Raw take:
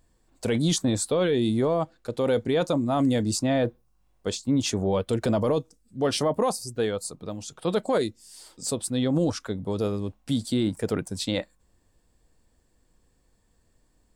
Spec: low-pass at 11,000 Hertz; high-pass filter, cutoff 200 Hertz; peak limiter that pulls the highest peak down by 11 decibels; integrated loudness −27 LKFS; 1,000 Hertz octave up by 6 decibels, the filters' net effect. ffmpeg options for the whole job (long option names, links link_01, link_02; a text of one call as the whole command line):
ffmpeg -i in.wav -af "highpass=200,lowpass=11000,equalizer=frequency=1000:width_type=o:gain=8,volume=4.5dB,alimiter=limit=-16.5dB:level=0:latency=1" out.wav